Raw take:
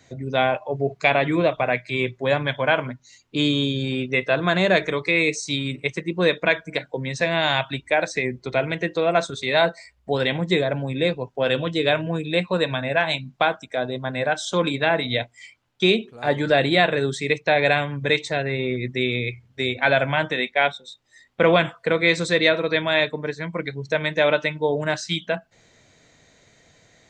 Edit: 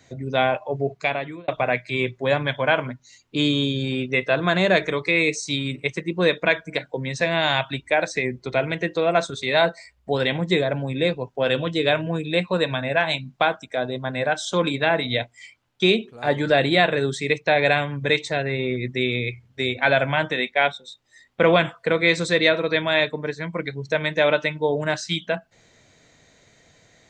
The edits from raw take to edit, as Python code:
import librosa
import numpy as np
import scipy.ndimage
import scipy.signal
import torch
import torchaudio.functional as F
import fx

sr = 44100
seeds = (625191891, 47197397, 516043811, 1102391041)

y = fx.edit(x, sr, fx.fade_out_span(start_s=0.77, length_s=0.71), tone=tone)